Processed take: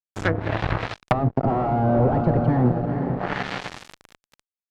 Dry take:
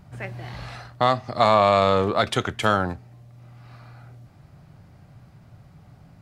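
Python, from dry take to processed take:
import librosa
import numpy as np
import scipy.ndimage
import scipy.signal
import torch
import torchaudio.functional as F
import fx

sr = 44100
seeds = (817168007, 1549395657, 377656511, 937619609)

y = fx.speed_glide(x, sr, from_pct=78, to_pct=186)
y = fx.echo_diffused(y, sr, ms=472, feedback_pct=50, wet_db=-10.5)
y = fx.fuzz(y, sr, gain_db=28.0, gate_db=-35.0)
y = fx.env_lowpass_down(y, sr, base_hz=400.0, full_db=-17.5)
y = F.gain(torch.from_numpy(y), 4.0).numpy()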